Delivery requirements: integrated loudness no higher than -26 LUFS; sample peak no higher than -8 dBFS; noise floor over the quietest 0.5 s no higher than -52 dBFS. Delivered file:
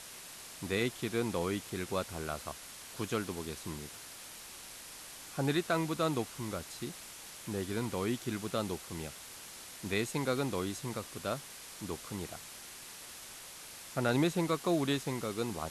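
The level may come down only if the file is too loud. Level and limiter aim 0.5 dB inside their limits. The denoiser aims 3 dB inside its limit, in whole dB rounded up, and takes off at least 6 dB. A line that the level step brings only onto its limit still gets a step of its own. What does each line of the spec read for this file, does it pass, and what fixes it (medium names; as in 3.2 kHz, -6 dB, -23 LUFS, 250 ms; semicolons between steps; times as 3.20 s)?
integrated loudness -36.5 LUFS: pass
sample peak -19.0 dBFS: pass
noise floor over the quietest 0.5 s -49 dBFS: fail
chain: noise reduction 6 dB, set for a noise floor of -49 dBFS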